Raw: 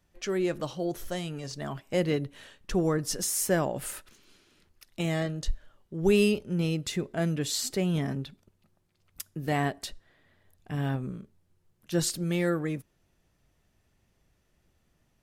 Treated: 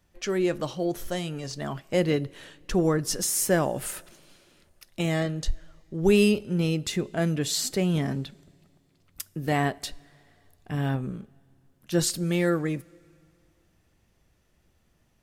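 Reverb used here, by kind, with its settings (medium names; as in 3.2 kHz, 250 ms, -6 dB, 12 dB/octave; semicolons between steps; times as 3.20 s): two-slope reverb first 0.2 s, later 2.5 s, from -18 dB, DRR 18.5 dB; trim +3 dB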